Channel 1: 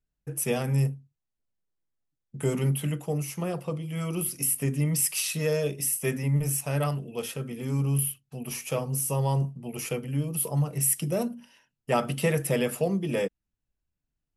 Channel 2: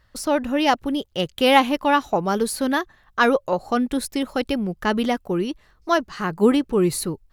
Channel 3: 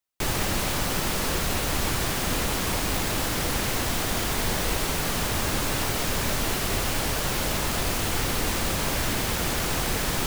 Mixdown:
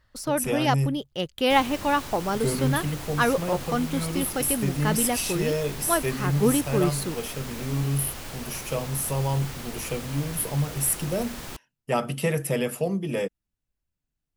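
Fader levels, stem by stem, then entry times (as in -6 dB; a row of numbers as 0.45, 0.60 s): 0.0, -5.0, -11.5 dB; 0.00, 0.00, 1.30 s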